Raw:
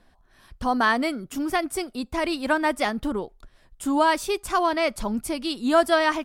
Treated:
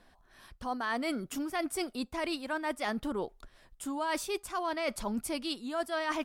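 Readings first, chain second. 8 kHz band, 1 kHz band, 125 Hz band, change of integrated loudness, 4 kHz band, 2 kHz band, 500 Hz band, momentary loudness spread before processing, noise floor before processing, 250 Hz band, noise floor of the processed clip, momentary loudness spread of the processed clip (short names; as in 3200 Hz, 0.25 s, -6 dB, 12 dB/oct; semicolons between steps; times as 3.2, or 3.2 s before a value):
-5.5 dB, -11.5 dB, -8.0 dB, -10.5 dB, -8.0 dB, -11.0 dB, -11.0 dB, 9 LU, -60 dBFS, -9.5 dB, -64 dBFS, 5 LU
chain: low shelf 240 Hz -5.5 dB; reverse; compressor 10:1, threshold -30 dBFS, peak gain reduction 16 dB; reverse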